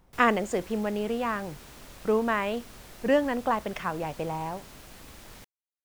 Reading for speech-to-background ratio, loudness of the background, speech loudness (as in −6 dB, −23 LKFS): 19.0 dB, −47.5 LKFS, −28.5 LKFS